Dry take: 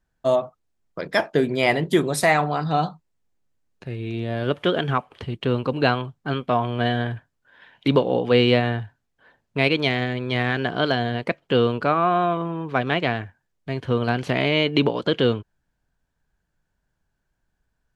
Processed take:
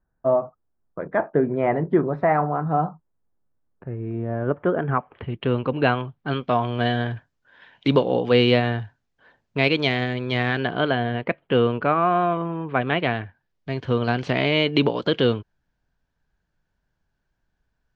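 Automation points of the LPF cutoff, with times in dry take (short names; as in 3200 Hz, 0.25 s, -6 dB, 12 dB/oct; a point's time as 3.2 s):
LPF 24 dB/oct
4.74 s 1500 Hz
5.43 s 3100 Hz
6.06 s 3100 Hz
6.61 s 6900 Hz
10.44 s 6900 Hz
10.85 s 3000 Hz
12.79 s 3000 Hz
13.7 s 6100 Hz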